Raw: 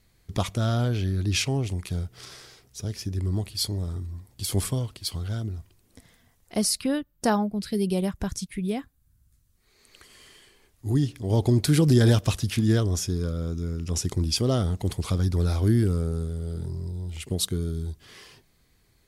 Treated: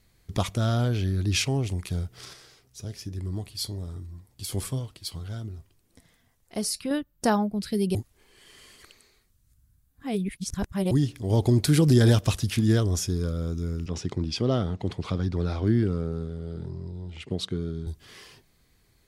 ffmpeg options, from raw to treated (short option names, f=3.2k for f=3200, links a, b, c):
-filter_complex "[0:a]asettb=1/sr,asplit=3[a][b][c];[a]atrim=end=2.334[d];[b]atrim=start=2.33:end=6.91,asetpts=PTS-STARTPTS,afade=t=in:d=0.004:c=qsin,afade=t=out:st=4.576:d=0.004:c=qsin,flanger=delay=5.7:depth=2.5:regen=77:speed=1.1:shape=triangular[e];[c]atrim=start=6.906[f];[d][e]acrossfade=d=0.004:c1=hsin:c2=qsin[g];[g][f]acrossfade=d=0.004:c1=qsin:c2=hsin,asettb=1/sr,asplit=3[h][i][j];[h]atrim=end=13.864[k];[i]atrim=start=13.86:end=17.87,asetpts=PTS-STARTPTS,afade=t=in:d=0.004:c=qsin,afade=t=out:st=4.006:d=0.004:c=qsin,highpass=110,lowpass=3.7k[l];[j]atrim=start=17.866[m];[k][l]acrossfade=d=0.004:c1=hsin:c2=qsin[n];[n][m]acrossfade=d=0.004:c1=qsin:c2=hsin,asplit=3[o][p][q];[o]atrim=end=7.952[r];[p]atrim=start=7.948:end=10.912,asetpts=PTS-STARTPTS,areverse[s];[q]atrim=start=10.908[t];[r][s]acrossfade=d=0.004:c1=hsin:c2=hsin[u];[u][t]acrossfade=d=0.004:c1=hsin:c2=hsin"